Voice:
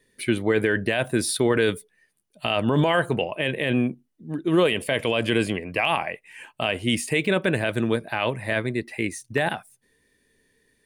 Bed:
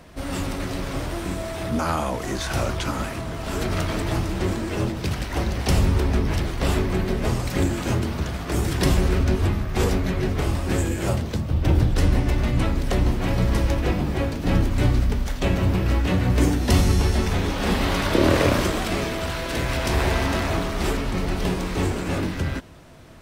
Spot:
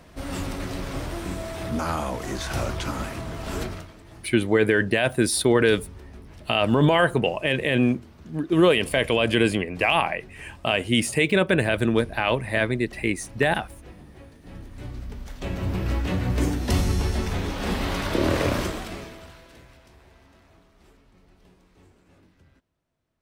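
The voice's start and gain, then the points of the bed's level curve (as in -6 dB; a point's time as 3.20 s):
4.05 s, +2.0 dB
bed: 3.61 s -3 dB
3.94 s -22.5 dB
14.49 s -22.5 dB
15.82 s -4.5 dB
18.62 s -4.5 dB
19.99 s -32.5 dB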